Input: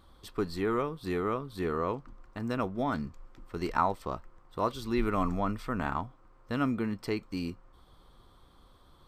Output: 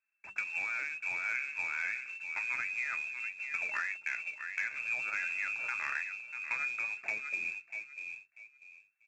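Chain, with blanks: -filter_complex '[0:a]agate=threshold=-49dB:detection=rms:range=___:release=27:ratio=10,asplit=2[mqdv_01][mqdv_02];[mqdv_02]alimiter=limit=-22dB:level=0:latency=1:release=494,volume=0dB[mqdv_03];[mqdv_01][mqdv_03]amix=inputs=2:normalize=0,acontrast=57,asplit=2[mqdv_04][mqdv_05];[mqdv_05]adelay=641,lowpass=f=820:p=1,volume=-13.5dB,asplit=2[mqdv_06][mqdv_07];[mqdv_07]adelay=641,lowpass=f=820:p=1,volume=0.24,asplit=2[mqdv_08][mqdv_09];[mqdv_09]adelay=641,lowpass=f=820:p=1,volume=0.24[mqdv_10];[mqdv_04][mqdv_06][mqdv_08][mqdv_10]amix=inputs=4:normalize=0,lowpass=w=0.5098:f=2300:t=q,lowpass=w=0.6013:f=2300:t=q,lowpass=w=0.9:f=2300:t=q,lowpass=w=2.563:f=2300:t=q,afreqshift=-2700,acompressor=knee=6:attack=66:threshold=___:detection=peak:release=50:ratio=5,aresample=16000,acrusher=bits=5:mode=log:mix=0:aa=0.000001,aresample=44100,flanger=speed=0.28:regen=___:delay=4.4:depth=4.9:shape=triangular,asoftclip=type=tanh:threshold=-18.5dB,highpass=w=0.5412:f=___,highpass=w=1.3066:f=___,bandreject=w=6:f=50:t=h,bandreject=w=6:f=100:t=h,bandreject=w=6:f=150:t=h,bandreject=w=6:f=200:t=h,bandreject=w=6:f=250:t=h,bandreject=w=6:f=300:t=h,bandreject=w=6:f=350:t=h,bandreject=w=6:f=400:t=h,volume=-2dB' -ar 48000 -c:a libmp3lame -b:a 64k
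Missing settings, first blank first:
-34dB, -34dB, 64, 47, 47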